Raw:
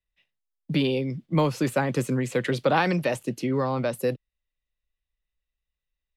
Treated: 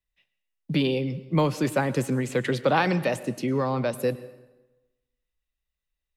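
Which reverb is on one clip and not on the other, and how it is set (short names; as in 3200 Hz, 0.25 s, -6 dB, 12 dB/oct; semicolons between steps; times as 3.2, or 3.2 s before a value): plate-style reverb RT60 1.1 s, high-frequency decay 0.75×, pre-delay 90 ms, DRR 16 dB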